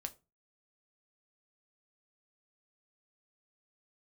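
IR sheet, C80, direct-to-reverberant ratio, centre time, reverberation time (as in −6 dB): 26.0 dB, 6.5 dB, 5 ms, 0.30 s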